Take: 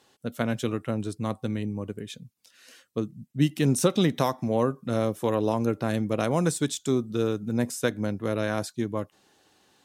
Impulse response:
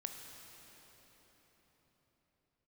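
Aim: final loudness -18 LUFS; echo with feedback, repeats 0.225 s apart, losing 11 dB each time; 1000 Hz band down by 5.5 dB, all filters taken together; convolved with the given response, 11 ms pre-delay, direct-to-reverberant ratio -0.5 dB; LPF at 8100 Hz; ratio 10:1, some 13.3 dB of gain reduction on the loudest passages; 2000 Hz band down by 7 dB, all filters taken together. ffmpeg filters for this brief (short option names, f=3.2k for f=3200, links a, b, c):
-filter_complex "[0:a]lowpass=8.1k,equalizer=f=1k:t=o:g=-5.5,equalizer=f=2k:t=o:g=-7.5,acompressor=threshold=-31dB:ratio=10,aecho=1:1:225|450|675:0.282|0.0789|0.0221,asplit=2[a][b];[1:a]atrim=start_sample=2205,adelay=11[c];[b][c]afir=irnorm=-1:irlink=0,volume=2.5dB[d];[a][d]amix=inputs=2:normalize=0,volume=16.5dB"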